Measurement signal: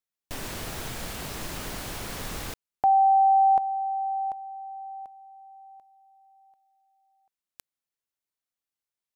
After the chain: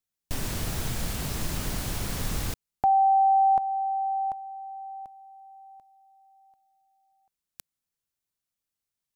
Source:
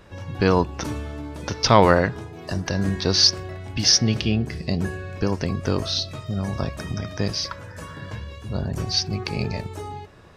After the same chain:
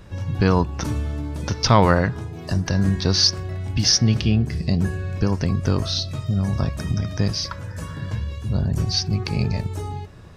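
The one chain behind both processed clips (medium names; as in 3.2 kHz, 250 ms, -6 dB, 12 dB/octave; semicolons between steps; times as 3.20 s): dynamic bell 1.2 kHz, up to +4 dB, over -34 dBFS, Q 0.83; in parallel at -2 dB: compression, threshold -28 dBFS; on the sum: tone controls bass +9 dB, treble +4 dB; trim -5.5 dB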